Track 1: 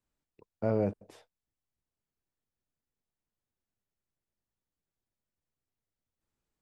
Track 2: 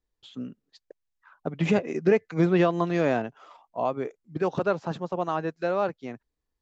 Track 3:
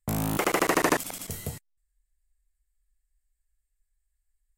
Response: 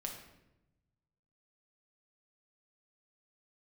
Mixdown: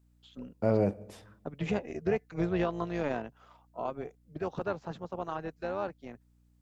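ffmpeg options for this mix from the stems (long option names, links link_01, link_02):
-filter_complex "[0:a]highshelf=frequency=4300:gain=5.5,volume=1dB,asplit=2[link_01][link_02];[link_02]volume=-12.5dB[link_03];[1:a]tremolo=f=290:d=0.571,volume=-6dB[link_04];[3:a]atrim=start_sample=2205[link_05];[link_03][link_05]afir=irnorm=-1:irlink=0[link_06];[link_01][link_04][link_06]amix=inputs=3:normalize=0,aeval=exprs='val(0)+0.000631*(sin(2*PI*60*n/s)+sin(2*PI*2*60*n/s)/2+sin(2*PI*3*60*n/s)/3+sin(2*PI*4*60*n/s)/4+sin(2*PI*5*60*n/s)/5)':channel_layout=same"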